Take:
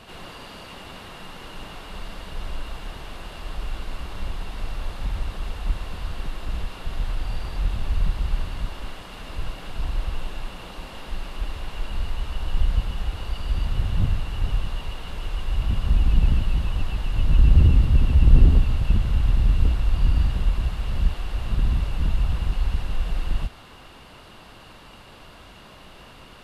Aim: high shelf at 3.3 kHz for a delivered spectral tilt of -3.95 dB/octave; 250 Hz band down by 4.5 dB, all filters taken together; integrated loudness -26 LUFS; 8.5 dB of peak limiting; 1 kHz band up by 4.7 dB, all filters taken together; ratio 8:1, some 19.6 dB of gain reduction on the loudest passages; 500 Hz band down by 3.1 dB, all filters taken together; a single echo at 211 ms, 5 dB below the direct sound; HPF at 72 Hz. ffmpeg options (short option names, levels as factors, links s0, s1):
-af "highpass=72,equalizer=f=250:t=o:g=-6.5,equalizer=f=500:t=o:g=-4.5,equalizer=f=1000:t=o:g=7,highshelf=f=3300:g=3,acompressor=threshold=0.0178:ratio=8,alimiter=level_in=3.55:limit=0.0631:level=0:latency=1,volume=0.282,aecho=1:1:211:0.562,volume=7.08"